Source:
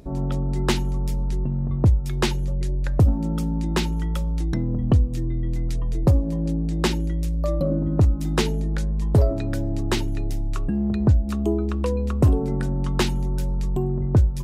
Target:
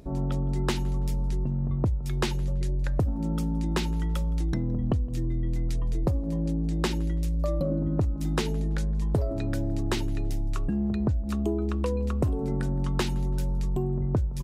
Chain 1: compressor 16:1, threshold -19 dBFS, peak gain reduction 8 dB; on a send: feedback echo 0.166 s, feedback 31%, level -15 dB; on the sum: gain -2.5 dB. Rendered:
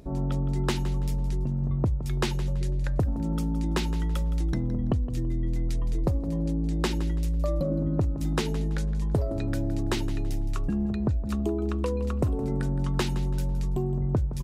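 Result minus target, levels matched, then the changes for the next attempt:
echo-to-direct +11 dB
change: feedback echo 0.166 s, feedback 31%, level -26 dB

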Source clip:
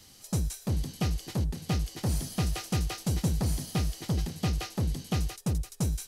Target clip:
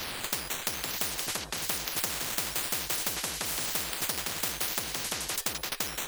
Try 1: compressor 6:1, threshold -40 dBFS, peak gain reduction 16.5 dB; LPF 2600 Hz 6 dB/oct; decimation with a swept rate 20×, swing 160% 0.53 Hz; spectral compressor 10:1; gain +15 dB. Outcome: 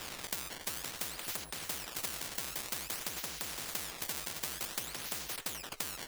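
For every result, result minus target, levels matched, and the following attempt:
compressor: peak gain reduction +6 dB; decimation with a swept rate: distortion +7 dB
compressor 6:1, threshold -32.5 dBFS, peak gain reduction 10 dB; LPF 2600 Hz 6 dB/oct; decimation with a swept rate 20×, swing 160% 0.53 Hz; spectral compressor 10:1; gain +15 dB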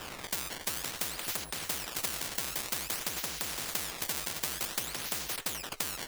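decimation with a swept rate: distortion +7 dB
compressor 6:1, threshold -32.5 dBFS, peak gain reduction 10 dB; LPF 2600 Hz 6 dB/oct; decimation with a swept rate 5×, swing 160% 0.53 Hz; spectral compressor 10:1; gain +15 dB

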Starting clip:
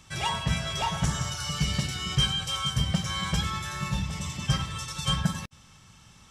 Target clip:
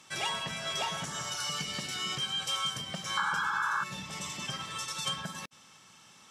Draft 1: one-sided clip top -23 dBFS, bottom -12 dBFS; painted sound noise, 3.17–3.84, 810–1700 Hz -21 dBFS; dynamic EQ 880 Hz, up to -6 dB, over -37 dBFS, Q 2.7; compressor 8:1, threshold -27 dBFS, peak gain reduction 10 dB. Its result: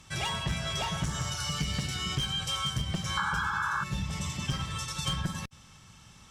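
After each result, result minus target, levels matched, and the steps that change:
250 Hz band +7.0 dB; one-sided clip: distortion +8 dB
add after compressor: HPF 280 Hz 12 dB/oct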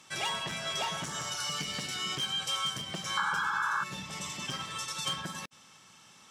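one-sided clip: distortion +8 dB
change: one-sided clip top -12.5 dBFS, bottom -12 dBFS

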